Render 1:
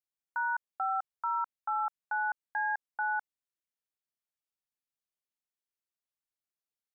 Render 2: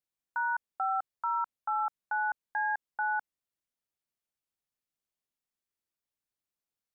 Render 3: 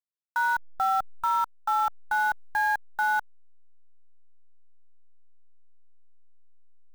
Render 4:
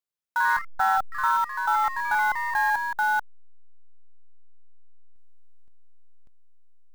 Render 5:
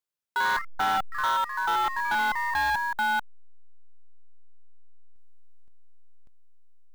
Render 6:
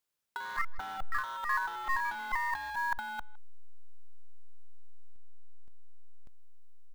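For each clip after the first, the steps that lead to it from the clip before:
bass shelf 470 Hz +5.5 dB
send-on-delta sampling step -42.5 dBFS; trim +6 dB
ever faster or slower copies 82 ms, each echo +2 st, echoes 3, each echo -6 dB; trim +1.5 dB
hard clipper -21.5 dBFS, distortion -12 dB
compressor with a negative ratio -31 dBFS, ratio -0.5; speakerphone echo 160 ms, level -22 dB

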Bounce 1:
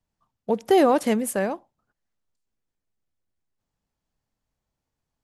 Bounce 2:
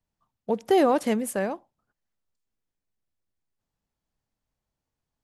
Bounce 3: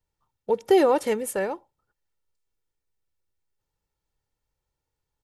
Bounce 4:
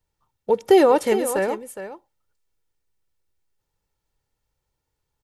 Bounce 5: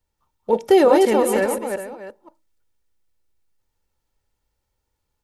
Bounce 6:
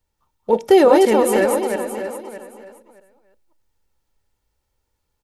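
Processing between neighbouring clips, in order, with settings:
treble shelf 9.8 kHz -3 dB; trim -2.5 dB
comb 2.2 ms, depth 58%
delay 413 ms -11.5 dB; trim +4 dB
chunks repeated in reverse 176 ms, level -3 dB; on a send at -16.5 dB: reverberation RT60 0.25 s, pre-delay 3 ms
feedback delay 620 ms, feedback 19%, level -11.5 dB; trim +2 dB

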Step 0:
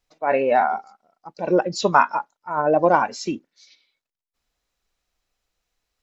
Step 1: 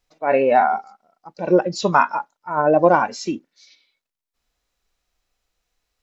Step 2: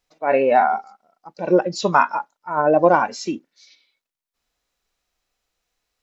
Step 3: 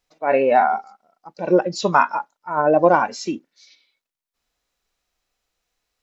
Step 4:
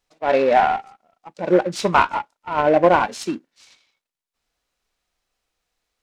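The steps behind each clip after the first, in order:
harmonic-percussive split harmonic +5 dB; trim -1 dB
bass shelf 96 Hz -7.5 dB
no audible change
delay time shaken by noise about 1.2 kHz, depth 0.033 ms

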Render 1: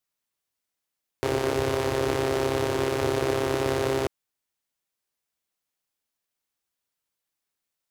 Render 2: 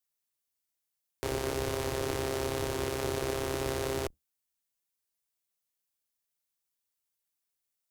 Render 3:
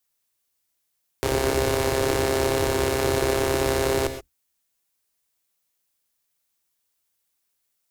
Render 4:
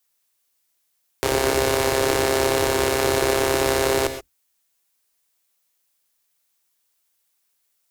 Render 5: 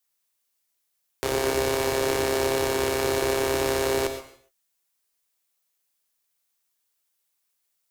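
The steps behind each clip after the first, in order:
octave divider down 2 oct, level -4 dB; treble shelf 5 kHz +9.5 dB; trim -8 dB
gated-style reverb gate 150 ms rising, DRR 8.5 dB; trim +9 dB
bass shelf 290 Hz -7.5 dB; trim +4.5 dB
gated-style reverb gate 320 ms falling, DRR 10 dB; trim -5.5 dB

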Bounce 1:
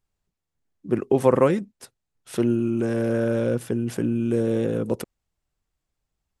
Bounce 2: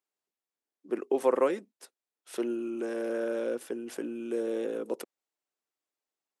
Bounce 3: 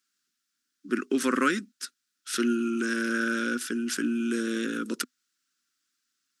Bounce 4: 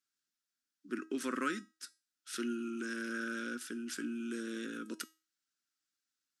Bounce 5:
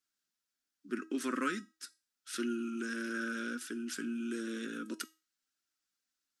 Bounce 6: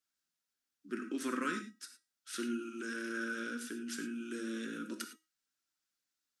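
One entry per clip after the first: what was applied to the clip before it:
high-pass 300 Hz 24 dB/octave; trim -6.5 dB
FFT filter 130 Hz 0 dB, 250 Hz +7 dB, 490 Hz -16 dB, 820 Hz -24 dB, 1.4 kHz +12 dB, 2.1 kHz +3 dB, 5.4 kHz +12 dB, 13 kHz +2 dB; trim +6.5 dB
feedback comb 320 Hz, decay 0.31 s, harmonics all, mix 60%; trim -4 dB
flange 1.6 Hz, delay 2.7 ms, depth 2.4 ms, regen -44%; trim +5 dB
gated-style reverb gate 130 ms flat, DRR 6.5 dB; trim -2 dB

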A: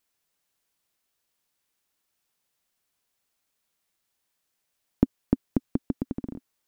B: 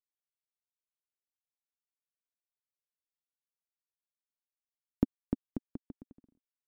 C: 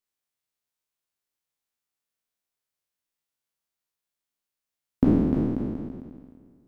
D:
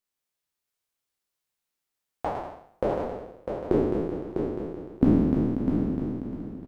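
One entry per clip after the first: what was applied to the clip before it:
upward expansion 2.5:1, over -38 dBFS; trim -6.5 dB
spectral sustain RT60 1.78 s; trim +4.5 dB
ever faster or slower copies 156 ms, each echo +6 st, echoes 3; on a send: feedback delay 651 ms, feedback 23%, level -6 dB

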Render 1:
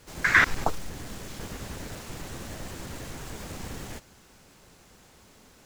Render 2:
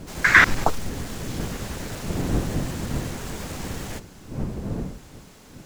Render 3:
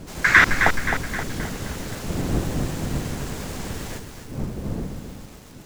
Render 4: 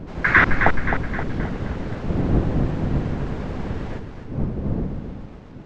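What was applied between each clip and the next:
wind noise 220 Hz -37 dBFS; trim +5.5 dB
bit-crushed delay 263 ms, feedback 55%, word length 7-bit, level -7 dB
tape spacing loss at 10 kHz 37 dB; trim +5 dB

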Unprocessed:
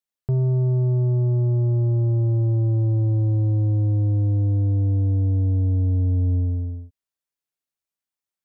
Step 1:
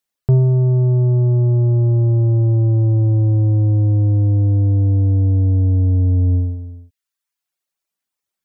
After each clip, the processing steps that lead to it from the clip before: reverb removal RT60 0.87 s; trim +9 dB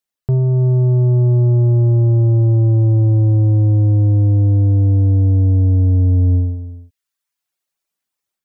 level rider gain up to 5.5 dB; trim -3.5 dB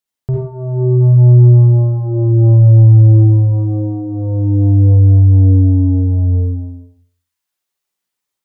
reverberation RT60 0.50 s, pre-delay 47 ms, DRR -1 dB; trim -1 dB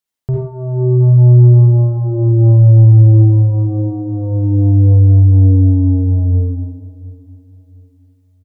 feedback delay 708 ms, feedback 34%, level -20.5 dB

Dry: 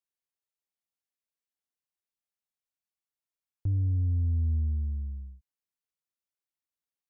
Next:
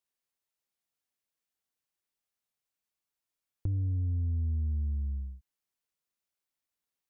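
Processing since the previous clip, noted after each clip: dynamic bell 110 Hz, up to -3 dB, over -37 dBFS, Q 1.3; compression, threshold -32 dBFS, peak gain reduction 5.5 dB; trim +3.5 dB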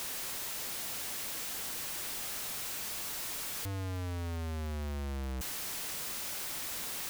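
one-bit comparator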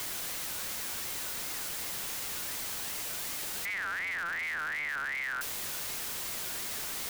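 partial rectifier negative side -3 dB; ring modulator with a swept carrier 1.8 kHz, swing 20%, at 2.7 Hz; trim +6 dB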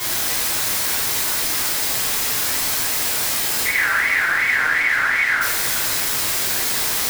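two-slope reverb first 0.57 s, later 4.1 s, from -17 dB, DRR -10 dB; trim +5.5 dB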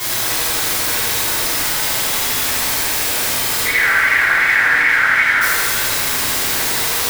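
bucket-brigade echo 81 ms, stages 2048, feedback 66%, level -3 dB; trim +2 dB

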